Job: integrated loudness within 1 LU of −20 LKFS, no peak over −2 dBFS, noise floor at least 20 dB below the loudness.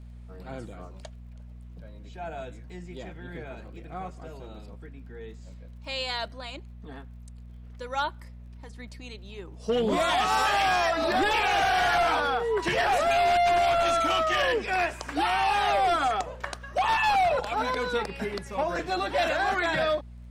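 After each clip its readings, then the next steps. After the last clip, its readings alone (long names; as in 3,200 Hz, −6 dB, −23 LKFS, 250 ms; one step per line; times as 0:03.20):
crackle rate 18 per second; mains hum 60 Hz; hum harmonics up to 240 Hz; level of the hum −42 dBFS; integrated loudness −25.5 LKFS; sample peak −15.0 dBFS; target loudness −20.0 LKFS
→ click removal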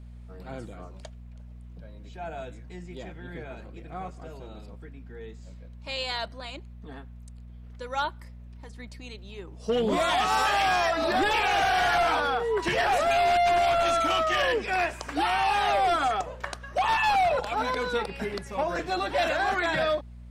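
crackle rate 0 per second; mains hum 60 Hz; hum harmonics up to 240 Hz; level of the hum −42 dBFS
→ hum removal 60 Hz, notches 4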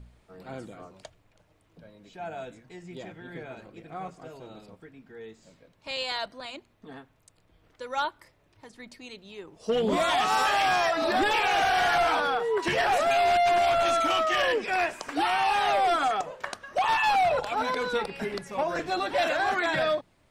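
mains hum none found; integrated loudness −25.5 LKFS; sample peak −15.5 dBFS; target loudness −20.0 LKFS
→ level +5.5 dB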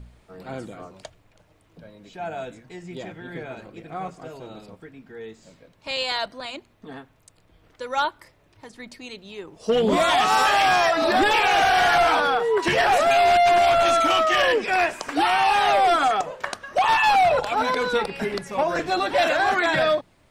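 integrated loudness −20.0 LKFS; sample peak −10.0 dBFS; background noise floor −60 dBFS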